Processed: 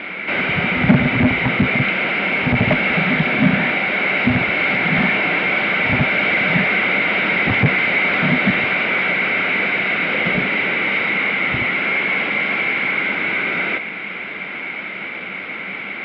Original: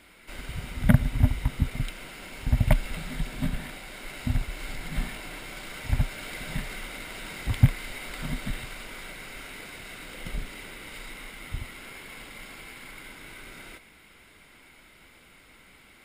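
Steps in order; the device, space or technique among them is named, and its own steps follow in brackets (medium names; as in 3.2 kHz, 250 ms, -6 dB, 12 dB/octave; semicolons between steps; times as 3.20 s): overdrive pedal into a guitar cabinet (overdrive pedal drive 38 dB, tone 1.1 kHz, clips at -3.5 dBFS; cabinet simulation 110–3400 Hz, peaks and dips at 190 Hz +9 dB, 1 kHz -5 dB, 2.3 kHz +8 dB); trim -1 dB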